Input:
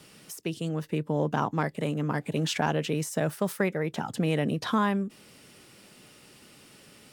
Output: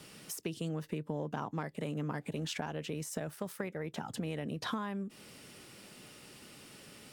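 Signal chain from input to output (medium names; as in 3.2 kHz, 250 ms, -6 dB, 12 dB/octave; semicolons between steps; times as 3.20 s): compression 6:1, threshold -34 dBFS, peak gain reduction 13.5 dB; 2.29–4.59 s: AM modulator 76 Hz, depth 15%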